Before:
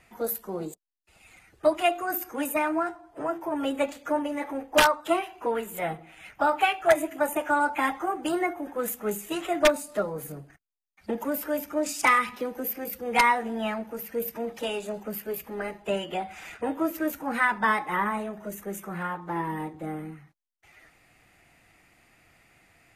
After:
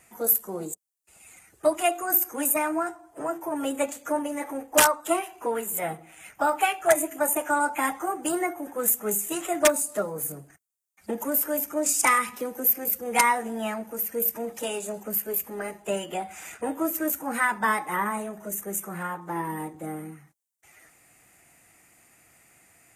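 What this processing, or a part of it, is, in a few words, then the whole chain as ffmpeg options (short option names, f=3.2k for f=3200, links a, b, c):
budget condenser microphone: -af "highpass=f=100:p=1,highshelf=f=5.7k:t=q:w=1.5:g=10"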